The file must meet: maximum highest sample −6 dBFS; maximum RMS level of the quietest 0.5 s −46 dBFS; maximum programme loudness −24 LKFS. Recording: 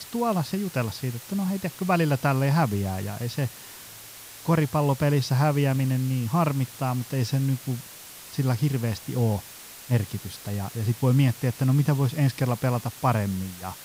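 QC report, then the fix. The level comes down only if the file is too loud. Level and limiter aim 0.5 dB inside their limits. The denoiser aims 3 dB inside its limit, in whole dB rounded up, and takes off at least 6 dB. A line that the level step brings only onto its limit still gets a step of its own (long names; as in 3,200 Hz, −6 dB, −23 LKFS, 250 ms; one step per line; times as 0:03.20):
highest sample −8.5 dBFS: in spec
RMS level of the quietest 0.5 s −44 dBFS: out of spec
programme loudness −25.5 LKFS: in spec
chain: broadband denoise 6 dB, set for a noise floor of −44 dBFS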